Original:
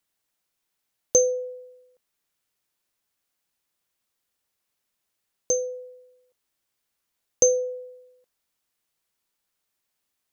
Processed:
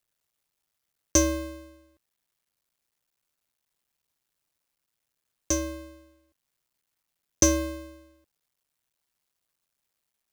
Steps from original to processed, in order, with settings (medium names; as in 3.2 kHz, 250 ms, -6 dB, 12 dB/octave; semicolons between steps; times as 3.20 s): cycle switcher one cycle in 2, muted; frequency shift -180 Hz; trim +1 dB